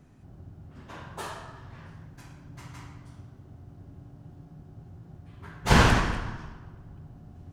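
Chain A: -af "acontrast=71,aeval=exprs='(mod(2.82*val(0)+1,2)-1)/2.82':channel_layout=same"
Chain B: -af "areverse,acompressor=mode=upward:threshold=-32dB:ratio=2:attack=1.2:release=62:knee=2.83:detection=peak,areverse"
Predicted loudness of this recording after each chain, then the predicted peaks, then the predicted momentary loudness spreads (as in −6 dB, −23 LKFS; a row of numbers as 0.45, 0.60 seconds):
−19.5, −27.0 LKFS; −9.0, −5.5 dBFS; 25, 21 LU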